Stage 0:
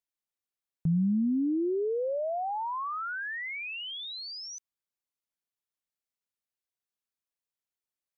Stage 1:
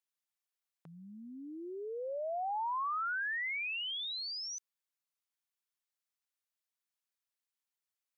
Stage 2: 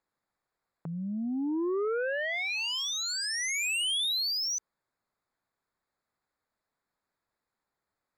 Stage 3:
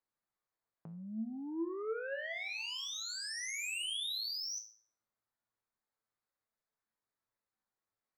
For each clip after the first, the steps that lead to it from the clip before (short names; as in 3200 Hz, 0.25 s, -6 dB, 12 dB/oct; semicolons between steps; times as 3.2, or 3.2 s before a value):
HPF 830 Hz 12 dB/oct
Wiener smoothing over 15 samples; sine folder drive 8 dB, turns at -33 dBFS; gain +5.5 dB
resonator 110 Hz, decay 0.45 s, harmonics all, mix 80%